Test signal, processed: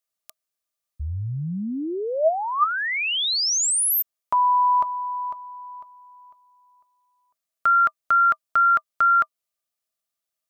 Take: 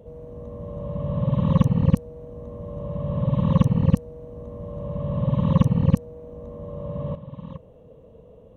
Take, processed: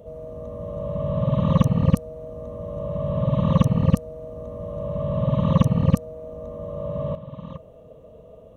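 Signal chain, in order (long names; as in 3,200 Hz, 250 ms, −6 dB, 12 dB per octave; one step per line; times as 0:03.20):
high-shelf EQ 2,900 Hz +7 dB
hollow resonant body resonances 640/1,200 Hz, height 13 dB, ringing for 60 ms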